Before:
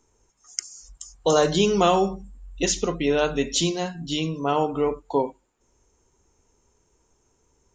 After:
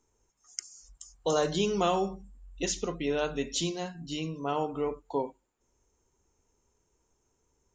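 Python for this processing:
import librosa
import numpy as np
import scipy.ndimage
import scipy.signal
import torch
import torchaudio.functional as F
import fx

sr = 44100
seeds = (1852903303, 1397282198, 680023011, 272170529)

y = fx.notch(x, sr, hz=3400.0, q=5.7, at=(3.92, 4.36))
y = y * librosa.db_to_amplitude(-8.0)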